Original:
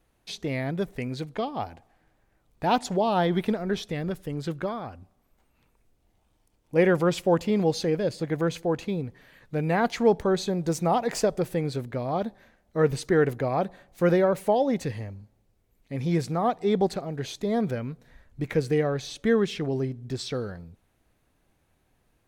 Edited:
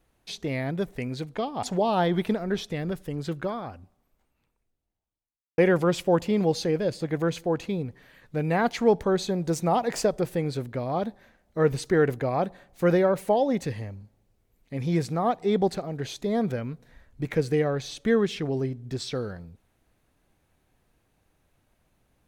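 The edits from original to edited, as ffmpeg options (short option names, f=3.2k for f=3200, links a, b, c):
-filter_complex "[0:a]asplit=3[a][b][c];[a]atrim=end=1.632[d];[b]atrim=start=2.818:end=6.77,asetpts=PTS-STARTPTS,afade=t=out:st=2.092:d=1.86:c=qua[e];[c]atrim=start=6.77,asetpts=PTS-STARTPTS,afade=t=in:d=0.004:c=hsin[f];[e][f]concat=n=2:v=0:a=1[g];[d][g]acrossfade=d=0.004:c1=hsin:c2=hsin"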